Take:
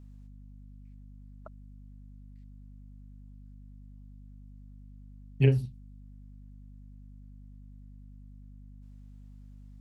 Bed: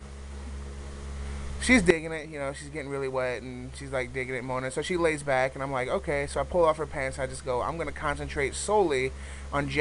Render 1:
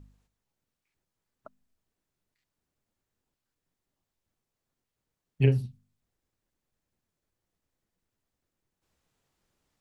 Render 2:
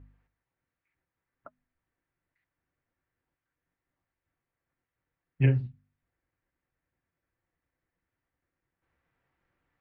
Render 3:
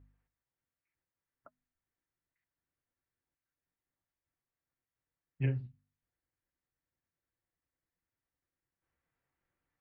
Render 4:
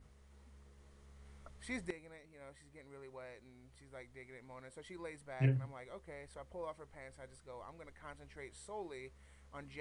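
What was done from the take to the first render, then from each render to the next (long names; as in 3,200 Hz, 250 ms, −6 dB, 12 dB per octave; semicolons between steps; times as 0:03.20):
hum removal 50 Hz, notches 5
low-pass with resonance 1,900 Hz, resonance Q 2.2; notch comb filter 210 Hz
level −9 dB
mix in bed −22.5 dB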